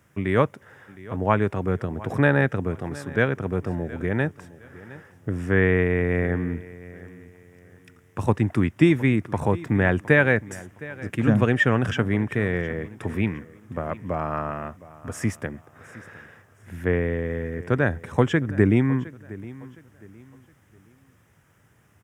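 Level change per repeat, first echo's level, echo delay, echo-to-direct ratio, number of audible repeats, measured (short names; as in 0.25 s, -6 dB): -10.0 dB, -19.0 dB, 0.713 s, -18.5 dB, 2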